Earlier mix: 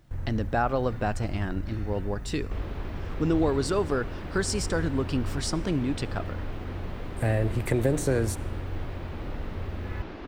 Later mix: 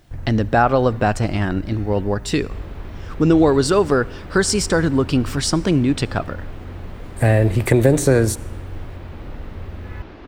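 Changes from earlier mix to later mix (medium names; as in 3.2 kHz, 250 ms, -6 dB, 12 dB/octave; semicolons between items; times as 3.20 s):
speech +10.5 dB; first sound: send +11.5 dB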